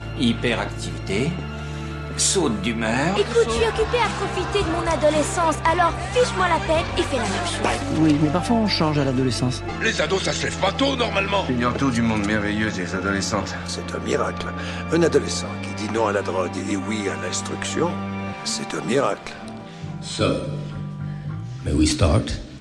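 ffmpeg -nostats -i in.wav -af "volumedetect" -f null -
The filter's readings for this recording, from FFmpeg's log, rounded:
mean_volume: -22.1 dB
max_volume: -5.8 dB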